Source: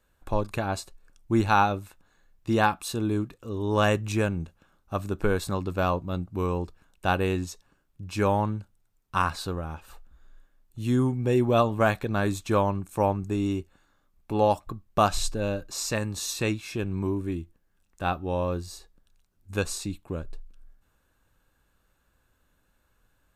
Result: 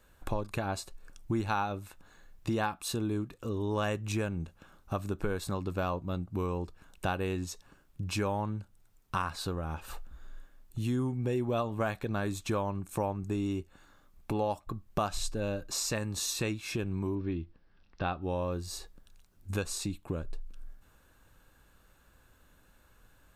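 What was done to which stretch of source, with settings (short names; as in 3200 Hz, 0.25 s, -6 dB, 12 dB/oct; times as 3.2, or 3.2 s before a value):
17.15–18.22 steep low-pass 5400 Hz 72 dB/oct
whole clip: compressor 3:1, threshold -40 dBFS; gain +6.5 dB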